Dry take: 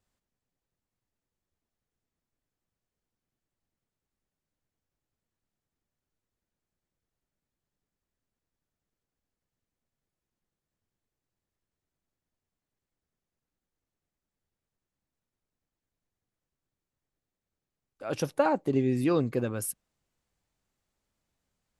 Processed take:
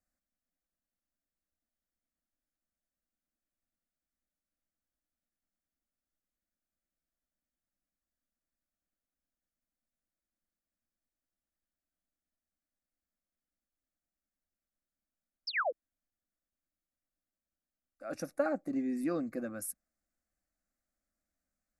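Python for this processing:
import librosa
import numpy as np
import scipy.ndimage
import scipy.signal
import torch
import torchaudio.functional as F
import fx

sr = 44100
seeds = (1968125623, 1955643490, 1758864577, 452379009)

y = fx.spec_paint(x, sr, seeds[0], shape='fall', start_s=15.47, length_s=0.25, low_hz=410.0, high_hz=5600.0, level_db=-24.0)
y = fx.fixed_phaser(y, sr, hz=630.0, stages=8)
y = y * 10.0 ** (-5.0 / 20.0)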